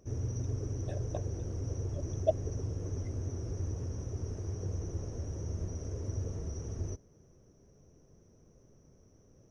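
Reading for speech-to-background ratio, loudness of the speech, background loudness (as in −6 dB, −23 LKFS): 0.0 dB, −38.5 LKFS, −38.5 LKFS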